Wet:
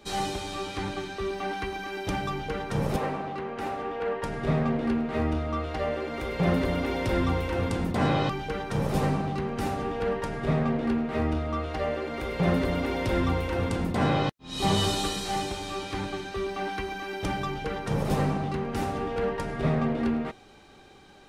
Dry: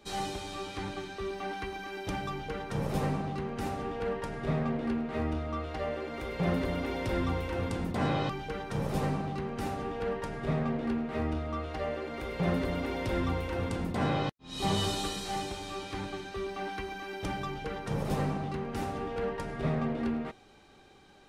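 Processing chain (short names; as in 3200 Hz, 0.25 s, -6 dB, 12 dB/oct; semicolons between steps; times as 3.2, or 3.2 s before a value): 2.96–4.23 tone controls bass -13 dB, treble -10 dB; gain +5 dB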